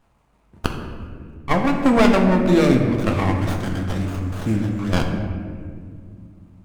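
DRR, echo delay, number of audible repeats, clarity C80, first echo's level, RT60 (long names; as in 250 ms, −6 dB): 2.5 dB, no echo audible, no echo audible, 6.0 dB, no echo audible, 2.1 s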